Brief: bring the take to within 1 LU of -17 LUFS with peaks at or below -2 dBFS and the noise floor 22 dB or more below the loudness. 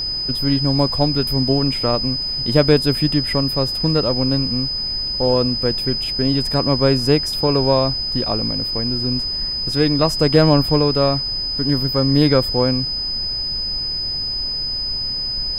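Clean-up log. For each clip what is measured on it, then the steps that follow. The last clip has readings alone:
steady tone 5000 Hz; tone level -21 dBFS; noise floor -24 dBFS; noise floor target -40 dBFS; loudness -17.5 LUFS; peak -1.5 dBFS; loudness target -17.0 LUFS
-> notch 5000 Hz, Q 30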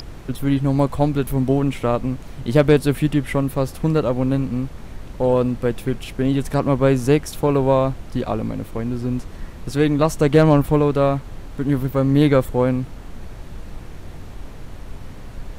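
steady tone none; noise floor -36 dBFS; noise floor target -42 dBFS
-> noise print and reduce 6 dB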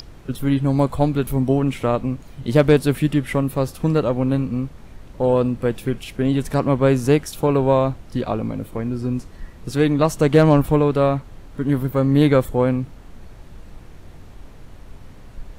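noise floor -41 dBFS; noise floor target -42 dBFS
-> noise print and reduce 6 dB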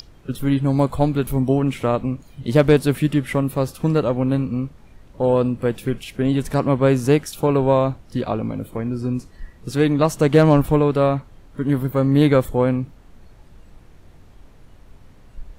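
noise floor -47 dBFS; loudness -19.5 LUFS; peak -2.5 dBFS; loudness target -17.0 LUFS
-> gain +2.5 dB; limiter -2 dBFS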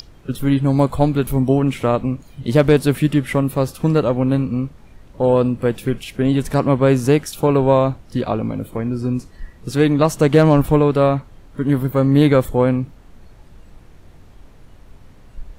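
loudness -17.5 LUFS; peak -2.0 dBFS; noise floor -45 dBFS

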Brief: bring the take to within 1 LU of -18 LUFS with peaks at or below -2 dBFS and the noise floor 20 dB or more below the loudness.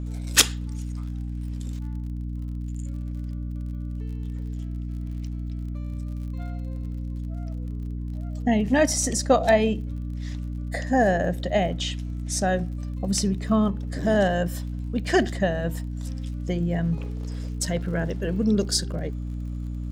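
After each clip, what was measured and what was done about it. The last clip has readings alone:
ticks 41/s; hum 60 Hz; harmonics up to 300 Hz; hum level -28 dBFS; loudness -26.5 LUFS; peak -5.5 dBFS; loudness target -18.0 LUFS
-> de-click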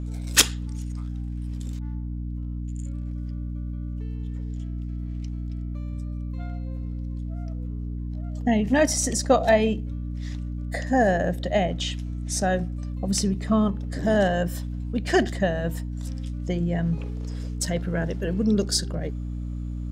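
ticks 0.050/s; hum 60 Hz; harmonics up to 300 Hz; hum level -28 dBFS
-> notches 60/120/180/240/300 Hz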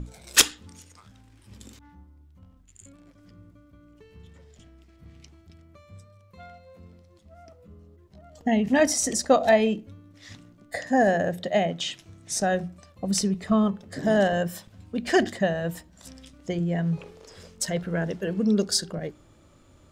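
hum none; loudness -24.5 LUFS; peak -5.0 dBFS; loudness target -18.0 LUFS
-> gain +6.5 dB; limiter -2 dBFS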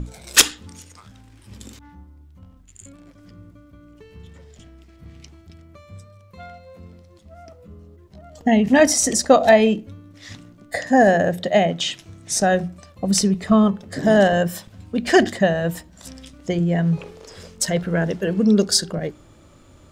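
loudness -18.5 LUFS; peak -2.0 dBFS; noise floor -49 dBFS

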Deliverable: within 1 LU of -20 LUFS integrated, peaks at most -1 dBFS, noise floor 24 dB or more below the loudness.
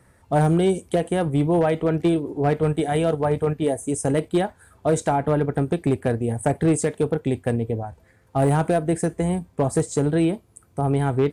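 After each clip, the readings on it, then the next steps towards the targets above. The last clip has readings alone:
clipped 1.1%; flat tops at -13.0 dBFS; loudness -22.5 LUFS; peak -13.0 dBFS; loudness target -20.0 LUFS
-> clip repair -13 dBFS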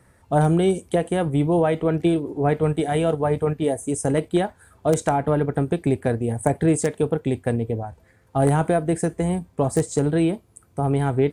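clipped 0.0%; loudness -22.5 LUFS; peak -4.0 dBFS; loudness target -20.0 LUFS
-> gain +2.5 dB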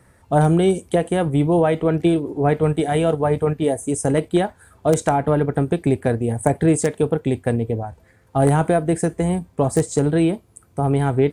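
loudness -20.0 LUFS; peak -1.5 dBFS; noise floor -55 dBFS

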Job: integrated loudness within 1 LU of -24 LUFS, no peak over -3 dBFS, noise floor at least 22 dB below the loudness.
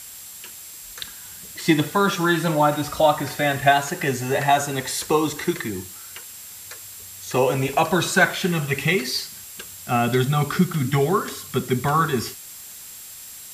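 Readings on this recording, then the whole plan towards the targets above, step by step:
steady tone 7600 Hz; tone level -44 dBFS; noise floor -40 dBFS; noise floor target -44 dBFS; loudness -21.5 LUFS; peak -4.5 dBFS; loudness target -24.0 LUFS
-> notch 7600 Hz, Q 30; noise print and reduce 6 dB; gain -2.5 dB

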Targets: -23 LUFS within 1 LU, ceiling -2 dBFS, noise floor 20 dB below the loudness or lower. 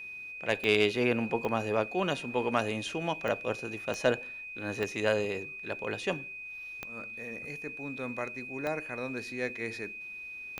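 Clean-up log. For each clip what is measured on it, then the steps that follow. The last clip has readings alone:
clicks 8; steady tone 2500 Hz; tone level -40 dBFS; loudness -32.5 LUFS; peak -12.0 dBFS; loudness target -23.0 LUFS
-> de-click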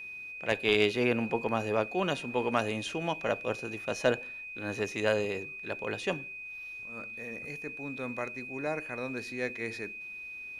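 clicks 0; steady tone 2500 Hz; tone level -40 dBFS
-> notch 2500 Hz, Q 30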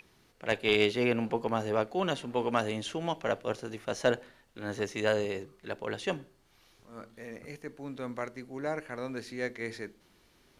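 steady tone none; loudness -32.5 LUFS; peak -10.5 dBFS; loudness target -23.0 LUFS
-> gain +9.5 dB; limiter -2 dBFS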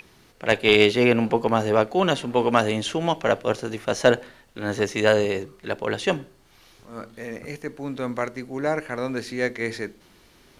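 loudness -23.0 LUFS; peak -2.0 dBFS; noise floor -56 dBFS

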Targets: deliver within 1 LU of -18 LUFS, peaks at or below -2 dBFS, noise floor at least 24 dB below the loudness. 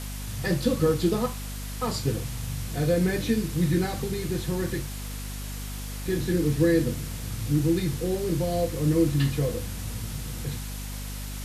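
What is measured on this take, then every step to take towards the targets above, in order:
hum 50 Hz; harmonics up to 250 Hz; hum level -33 dBFS; noise floor -35 dBFS; noise floor target -52 dBFS; loudness -27.5 LUFS; peak -10.0 dBFS; loudness target -18.0 LUFS
-> notches 50/100/150/200/250 Hz; denoiser 17 dB, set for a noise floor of -35 dBFS; gain +9.5 dB; limiter -2 dBFS

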